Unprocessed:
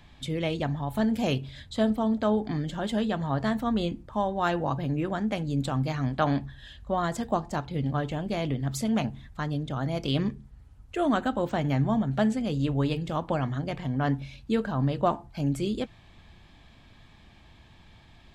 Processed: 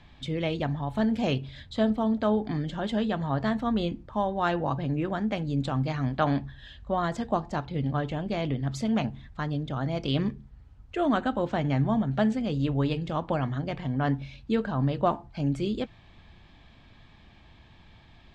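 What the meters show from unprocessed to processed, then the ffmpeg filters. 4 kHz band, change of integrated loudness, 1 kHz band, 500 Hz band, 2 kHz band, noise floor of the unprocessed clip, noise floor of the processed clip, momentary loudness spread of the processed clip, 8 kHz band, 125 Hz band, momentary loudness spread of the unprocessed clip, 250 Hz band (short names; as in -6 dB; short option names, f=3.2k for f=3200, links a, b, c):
-0.5 dB, 0.0 dB, 0.0 dB, 0.0 dB, 0.0 dB, -54 dBFS, -54 dBFS, 6 LU, n/a, 0.0 dB, 6 LU, 0.0 dB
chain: -af "lowpass=5.2k"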